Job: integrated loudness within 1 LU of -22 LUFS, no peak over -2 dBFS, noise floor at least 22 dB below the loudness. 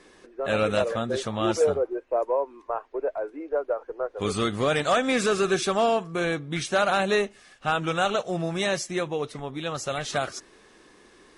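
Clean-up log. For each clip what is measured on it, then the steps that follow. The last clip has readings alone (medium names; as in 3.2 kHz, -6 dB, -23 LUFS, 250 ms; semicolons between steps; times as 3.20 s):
loudness -26.5 LUFS; peak level -12.0 dBFS; loudness target -22.0 LUFS
-> trim +4.5 dB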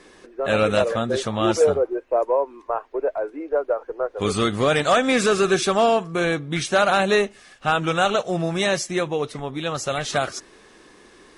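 loudness -22.0 LUFS; peak level -7.5 dBFS; noise floor -51 dBFS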